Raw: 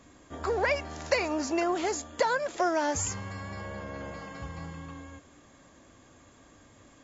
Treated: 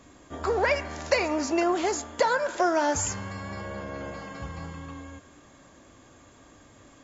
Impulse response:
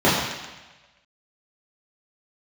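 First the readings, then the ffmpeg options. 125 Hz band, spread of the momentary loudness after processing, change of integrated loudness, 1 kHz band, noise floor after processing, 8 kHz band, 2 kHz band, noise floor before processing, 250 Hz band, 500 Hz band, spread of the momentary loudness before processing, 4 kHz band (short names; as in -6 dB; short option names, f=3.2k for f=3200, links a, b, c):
+2.0 dB, 15 LU, +3.0 dB, +3.5 dB, -55 dBFS, n/a, +2.5 dB, -57 dBFS, +3.5 dB, +3.0 dB, 14 LU, +2.5 dB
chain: -filter_complex "[0:a]asplit=2[a][b];[b]equalizer=f=1.5k:w=1.1:g=14.5[c];[1:a]atrim=start_sample=2205[d];[c][d]afir=irnorm=-1:irlink=0,volume=-42.5dB[e];[a][e]amix=inputs=2:normalize=0,volume=2.5dB"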